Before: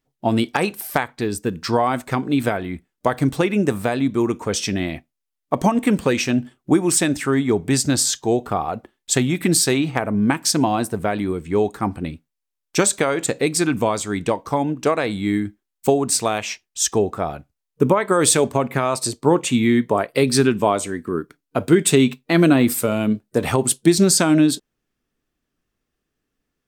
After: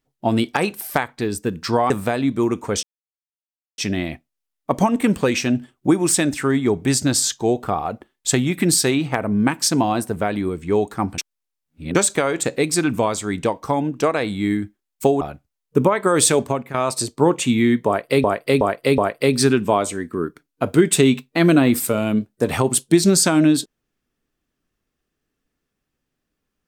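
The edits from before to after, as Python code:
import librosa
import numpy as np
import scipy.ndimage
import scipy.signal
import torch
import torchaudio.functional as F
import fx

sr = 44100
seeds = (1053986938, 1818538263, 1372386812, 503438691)

y = fx.edit(x, sr, fx.cut(start_s=1.9, length_s=1.78),
    fx.insert_silence(at_s=4.61, length_s=0.95),
    fx.reverse_span(start_s=12.01, length_s=0.77),
    fx.cut(start_s=16.04, length_s=1.22),
    fx.fade_out_to(start_s=18.49, length_s=0.3, floor_db=-14.5),
    fx.repeat(start_s=19.92, length_s=0.37, count=4), tone=tone)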